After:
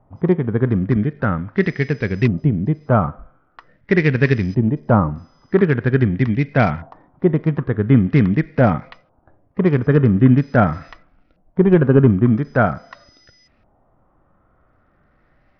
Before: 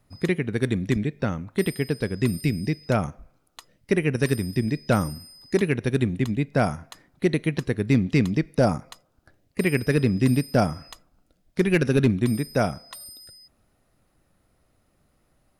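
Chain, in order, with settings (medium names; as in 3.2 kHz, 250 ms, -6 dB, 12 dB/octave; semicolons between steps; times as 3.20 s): LFO low-pass saw up 0.44 Hz 850–2400 Hz; harmonic-percussive split harmonic +7 dB; trim +2 dB; SBC 64 kbps 44.1 kHz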